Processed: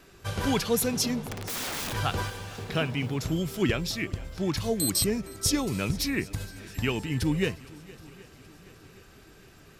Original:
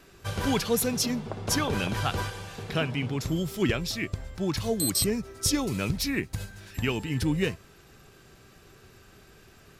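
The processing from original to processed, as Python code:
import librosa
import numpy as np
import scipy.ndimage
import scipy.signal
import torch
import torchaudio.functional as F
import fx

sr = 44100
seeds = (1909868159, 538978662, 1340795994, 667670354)

y = fx.overflow_wrap(x, sr, gain_db=28.5, at=(1.25, 1.92), fade=0.02)
y = fx.echo_swing(y, sr, ms=773, ratio=1.5, feedback_pct=47, wet_db=-21.5)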